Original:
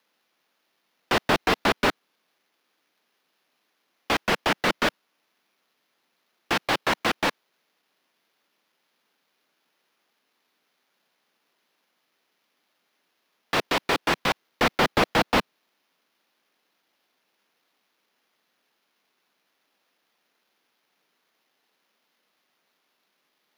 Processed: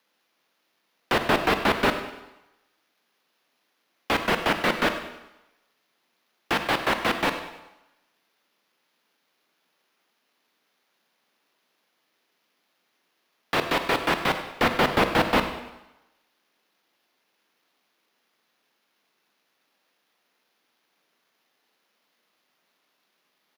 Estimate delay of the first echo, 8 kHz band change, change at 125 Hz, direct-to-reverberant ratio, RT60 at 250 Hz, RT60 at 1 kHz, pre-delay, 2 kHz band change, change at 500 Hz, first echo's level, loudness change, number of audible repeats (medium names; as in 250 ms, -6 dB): 99 ms, -3.0 dB, +1.0 dB, 7.0 dB, 0.85 s, 1.0 s, 24 ms, 0.0 dB, +1.0 dB, -15.0 dB, 0.0 dB, 4